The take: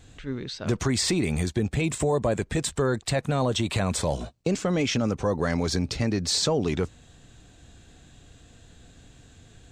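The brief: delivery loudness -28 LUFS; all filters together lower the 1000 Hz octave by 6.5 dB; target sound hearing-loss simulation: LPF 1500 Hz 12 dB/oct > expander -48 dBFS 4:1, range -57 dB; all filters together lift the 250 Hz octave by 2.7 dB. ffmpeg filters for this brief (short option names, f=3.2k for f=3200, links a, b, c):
-af "lowpass=1.5k,equalizer=f=250:t=o:g=4,equalizer=f=1k:t=o:g=-8.5,agate=range=-57dB:threshold=-48dB:ratio=4,volume=-1.5dB"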